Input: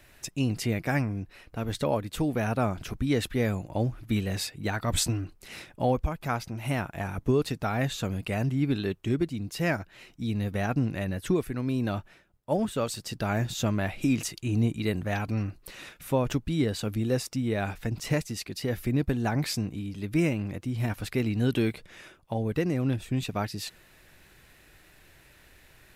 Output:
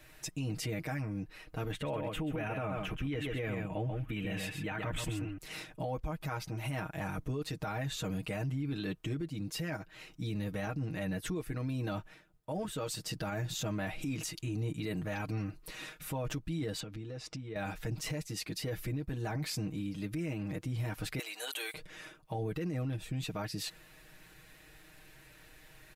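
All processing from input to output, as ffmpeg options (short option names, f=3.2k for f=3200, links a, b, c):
-filter_complex "[0:a]asettb=1/sr,asplit=3[a][b][c];[a]atrim=end=1.714[d];[b]atrim=start=1.71:end=5.38,asetpts=PTS-STARTPTS,afade=t=in:d=0.004:c=qsin,afade=t=out:st=3.666:d=0.004:c=qsin,highshelf=f=3.6k:t=q:w=3:g=-7.5,aecho=1:1:132:0.422,atrim=end_sample=161847[e];[c]atrim=start=5.376[f];[d][e]acrossfade=d=0.004:c1=hsin:c2=qsin[g];[g][f]acrossfade=d=0.004:c1=qsin:c2=hsin,asettb=1/sr,asplit=3[h][i][j];[h]atrim=end=16.804[k];[i]atrim=start=16.8:end=17.56,asetpts=PTS-STARTPTS,afade=t=in:d=0.004:c=qsin,afade=t=out:st=0.756:d=0.004:c=qsin,lowpass=4.9k,acompressor=threshold=-37dB:ratio=8:attack=3.2:release=140:knee=1:detection=peak[l];[j]atrim=start=17.556[m];[k][l]acrossfade=d=0.004:c1=hsin:c2=qsin[n];[n][m]acrossfade=d=0.004:c1=qsin:c2=hsin,asettb=1/sr,asplit=3[o][p][q];[o]atrim=end=21.194[r];[p]atrim=start=21.19:end=21.74,asetpts=PTS-STARTPTS,afade=t=in:d=0.004:c=qsin,afade=t=out:st=0.546:d=0.004:c=qsin,highpass=f=630:w=0.5412,highpass=f=630:w=1.3066,equalizer=f=10k:t=o:w=2.1:g=12.5,bandreject=f=5.3k:w=7.1[s];[q]atrim=start=21.736[t];[r][s]acrossfade=d=0.004:c1=hsin:c2=qsin[u];[u][t]acrossfade=d=0.004:c1=qsin:c2=hsin,aecho=1:1:6.4:0.82,acompressor=threshold=-30dB:ratio=2,alimiter=level_in=1.5dB:limit=-24dB:level=0:latency=1:release=11,volume=-1.5dB,volume=-3dB"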